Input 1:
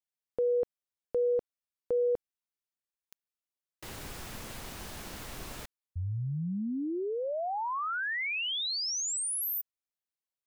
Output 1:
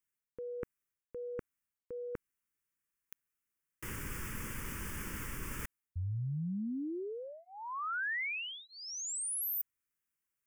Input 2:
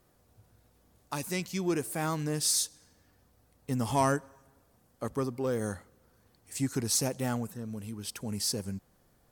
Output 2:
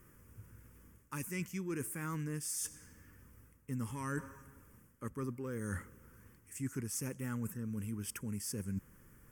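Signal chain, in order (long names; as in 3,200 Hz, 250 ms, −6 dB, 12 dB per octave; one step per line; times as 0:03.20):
reversed playback
downward compressor 5 to 1, threshold −43 dBFS
reversed playback
phaser with its sweep stopped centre 1,700 Hz, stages 4
level +7.5 dB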